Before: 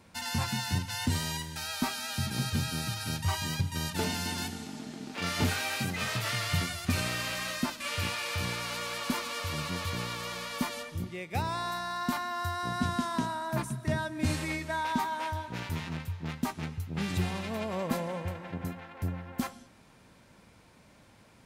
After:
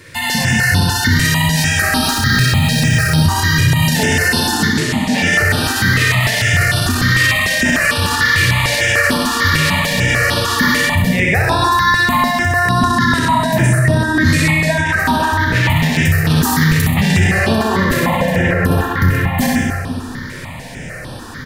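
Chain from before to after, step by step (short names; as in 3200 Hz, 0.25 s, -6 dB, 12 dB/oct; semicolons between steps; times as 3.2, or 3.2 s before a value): 2.05–3.19 median filter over 3 samples; 15.92–16.82 high shelf 3400 Hz +11 dB; in parallel at +0.5 dB: compressor, threshold -39 dBFS, peak gain reduction 15.5 dB; on the sum: feedback echo 64 ms, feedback 56%, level -4 dB; on a send at -3 dB: reverb RT60 1.3 s, pre-delay 32 ms; on the sum: AGC gain up to 8 dB; bell 1800 Hz +13.5 dB 0.26 oct; maximiser +13.5 dB; step phaser 6.7 Hz 210–7000 Hz; gain -1.5 dB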